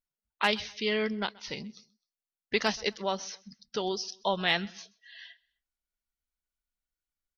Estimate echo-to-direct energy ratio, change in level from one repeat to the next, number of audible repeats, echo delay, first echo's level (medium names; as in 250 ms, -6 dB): -23.5 dB, -8.5 dB, 2, 129 ms, -24.0 dB